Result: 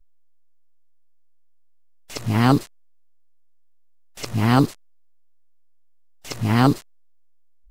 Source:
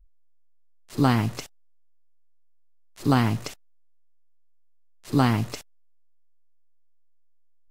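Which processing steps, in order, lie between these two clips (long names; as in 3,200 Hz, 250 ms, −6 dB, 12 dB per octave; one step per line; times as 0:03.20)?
played backwards from end to start
level +4 dB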